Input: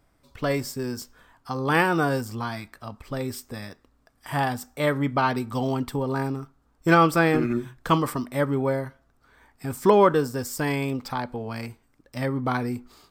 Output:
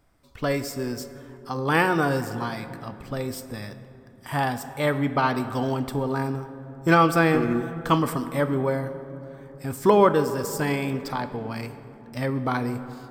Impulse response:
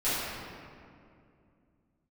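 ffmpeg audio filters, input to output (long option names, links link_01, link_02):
-filter_complex "[0:a]asplit=2[link_01][link_02];[1:a]atrim=start_sample=2205,asetrate=30429,aresample=44100,adelay=13[link_03];[link_02][link_03]afir=irnorm=-1:irlink=0,volume=-25dB[link_04];[link_01][link_04]amix=inputs=2:normalize=0"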